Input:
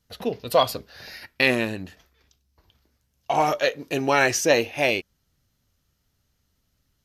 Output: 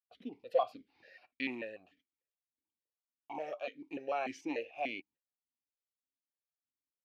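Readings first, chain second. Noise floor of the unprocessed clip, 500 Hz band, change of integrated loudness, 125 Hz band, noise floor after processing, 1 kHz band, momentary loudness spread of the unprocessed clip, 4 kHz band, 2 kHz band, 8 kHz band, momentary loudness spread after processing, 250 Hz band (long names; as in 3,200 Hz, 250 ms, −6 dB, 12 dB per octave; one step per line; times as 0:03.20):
−72 dBFS, −15.0 dB, −16.5 dB, −29.5 dB, below −85 dBFS, −15.0 dB, 16 LU, −22.5 dB, −19.5 dB, −32.5 dB, 14 LU, −14.0 dB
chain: noise gate −49 dBFS, range −17 dB
formant filter that steps through the vowels 6.8 Hz
level −6.5 dB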